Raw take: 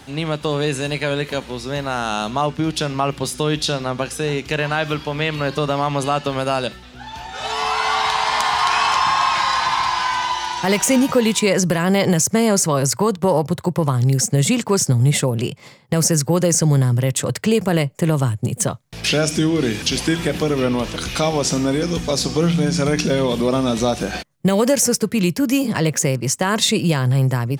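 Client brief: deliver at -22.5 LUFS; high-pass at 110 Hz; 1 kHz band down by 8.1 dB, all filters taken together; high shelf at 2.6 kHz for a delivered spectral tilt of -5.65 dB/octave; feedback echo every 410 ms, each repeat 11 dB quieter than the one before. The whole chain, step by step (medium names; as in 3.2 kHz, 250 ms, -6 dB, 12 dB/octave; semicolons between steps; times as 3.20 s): high-pass 110 Hz; peaking EQ 1 kHz -8.5 dB; treble shelf 2.6 kHz -9 dB; feedback delay 410 ms, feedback 28%, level -11 dB; trim -1 dB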